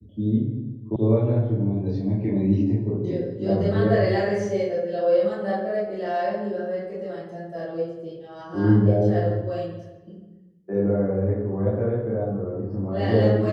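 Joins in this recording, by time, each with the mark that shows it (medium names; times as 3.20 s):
0.96 s: sound stops dead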